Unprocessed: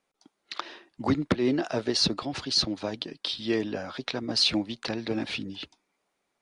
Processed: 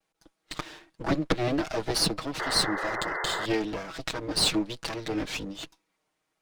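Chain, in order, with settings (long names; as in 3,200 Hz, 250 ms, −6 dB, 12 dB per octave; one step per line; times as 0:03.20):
lower of the sound and its delayed copy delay 6.3 ms
pitch vibrato 1.1 Hz 54 cents
sound drawn into the spectrogram noise, 0:02.39–0:03.46, 330–2,100 Hz −33 dBFS
level +1 dB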